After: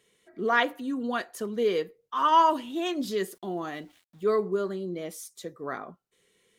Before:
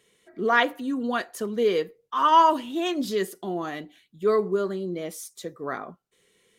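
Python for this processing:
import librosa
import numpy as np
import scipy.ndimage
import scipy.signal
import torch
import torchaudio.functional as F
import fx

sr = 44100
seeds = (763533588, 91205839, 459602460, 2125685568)

y = fx.sample_gate(x, sr, floor_db=-54.5, at=(3.1, 4.25))
y = y * librosa.db_to_amplitude(-3.0)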